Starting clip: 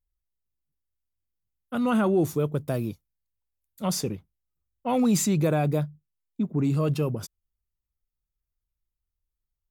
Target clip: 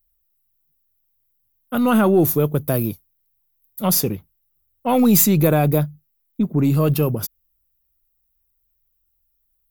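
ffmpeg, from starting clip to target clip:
-af "aexciter=amount=6.7:drive=5.1:freq=11k,aeval=exprs='0.376*(cos(1*acos(clip(val(0)/0.376,-1,1)))-cos(1*PI/2))+0.00668*(cos(6*acos(clip(val(0)/0.376,-1,1)))-cos(6*PI/2))':c=same,volume=7dB"

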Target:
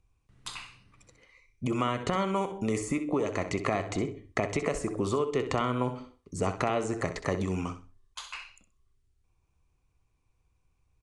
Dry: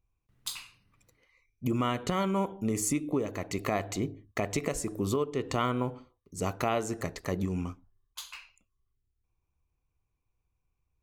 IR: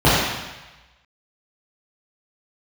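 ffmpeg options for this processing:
-filter_complex "[0:a]acrossover=split=470|2300[a][b][c];[a]acompressor=threshold=-39dB:ratio=4[d];[b]acompressor=threshold=-36dB:ratio=4[e];[c]acompressor=threshold=-51dB:ratio=4[f];[d][e][f]amix=inputs=3:normalize=0,asplit=2[g][h];[h]aecho=0:1:64|128|192:0.282|0.0648|0.0149[i];[g][i]amix=inputs=2:normalize=0,aresample=22050,aresample=44100,volume=7.5dB"

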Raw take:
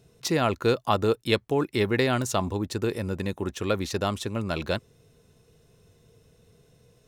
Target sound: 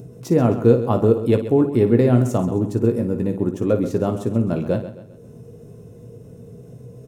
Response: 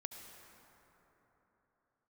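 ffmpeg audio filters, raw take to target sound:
-filter_complex "[0:a]asplit=2[a][b];[b]aecho=0:1:17|56:0.376|0.299[c];[a][c]amix=inputs=2:normalize=0,acompressor=mode=upward:threshold=-37dB:ratio=2.5,equalizer=f=125:t=o:w=1:g=11,equalizer=f=250:t=o:w=1:g=11,equalizer=f=500:t=o:w=1:g=8,equalizer=f=2k:t=o:w=1:g=-4,equalizer=f=4k:t=o:w=1:g=-11,asplit=2[d][e];[e]aecho=0:1:132|264|396|528:0.237|0.0996|0.0418|0.0176[f];[d][f]amix=inputs=2:normalize=0,volume=-3.5dB"

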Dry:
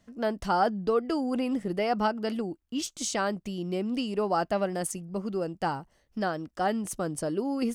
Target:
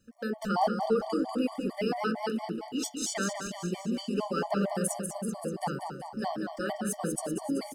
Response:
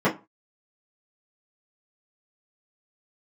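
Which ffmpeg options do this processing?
-filter_complex "[0:a]highshelf=f=5.6k:g=8,aecho=1:1:192|384|576|768|960|1152|1344|1536:0.473|0.284|0.17|0.102|0.0613|0.0368|0.0221|0.0132,asplit=2[a][b];[1:a]atrim=start_sample=2205,adelay=29[c];[b][c]afir=irnorm=-1:irlink=0,volume=-25.5dB[d];[a][d]amix=inputs=2:normalize=0,afftfilt=real='re*gt(sin(2*PI*4.4*pts/sr)*(1-2*mod(floor(b*sr/1024/600),2)),0)':imag='im*gt(sin(2*PI*4.4*pts/sr)*(1-2*mod(floor(b*sr/1024/600),2)),0)':win_size=1024:overlap=0.75,volume=-2dB"

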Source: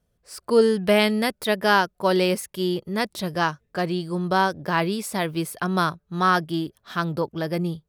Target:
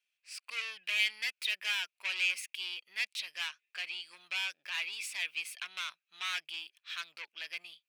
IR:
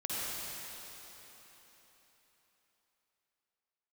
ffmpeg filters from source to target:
-af "equalizer=f=13k:t=o:w=0.61:g=-10.5,asoftclip=type=tanh:threshold=-23dB,highpass=f=2.5k:t=q:w=7,volume=-5.5dB"

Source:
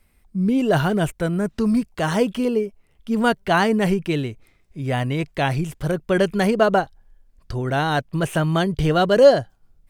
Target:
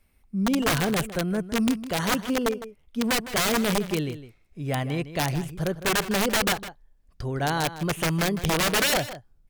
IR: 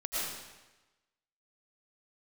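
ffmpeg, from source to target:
-filter_complex "[0:a]aeval=exprs='(mod(4.22*val(0)+1,2)-1)/4.22':c=same,asetrate=45938,aresample=44100,asplit=2[a][b];[b]adelay=157.4,volume=-13dB,highshelf=f=4k:g=-3.54[c];[a][c]amix=inputs=2:normalize=0,volume=-4.5dB"

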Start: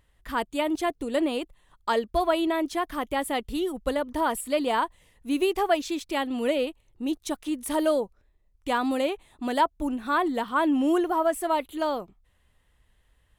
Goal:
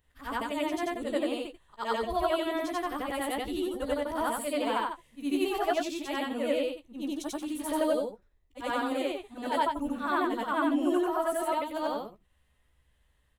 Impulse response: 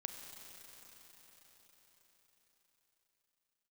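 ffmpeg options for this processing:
-filter_complex "[0:a]afftfilt=real='re':imag='-im':win_size=8192:overlap=0.75,asplit=2[a][b];[b]adelay=14,volume=-8dB[c];[a][c]amix=inputs=2:normalize=0"

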